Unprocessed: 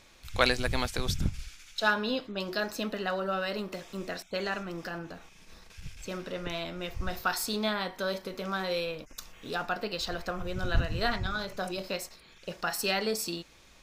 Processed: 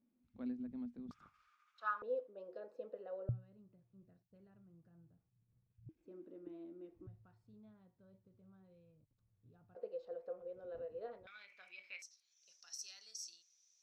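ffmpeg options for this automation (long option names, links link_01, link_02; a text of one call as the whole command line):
ffmpeg -i in.wav -af "asetnsamples=nb_out_samples=441:pad=0,asendcmd='1.11 bandpass f 1200;2.02 bandpass f 500;3.29 bandpass f 120;5.89 bandpass f 320;7.07 bandpass f 110;9.75 bandpass f 500;11.27 bandpass f 2300;12.02 bandpass f 5900',bandpass=frequency=240:width_type=q:width=15:csg=0" out.wav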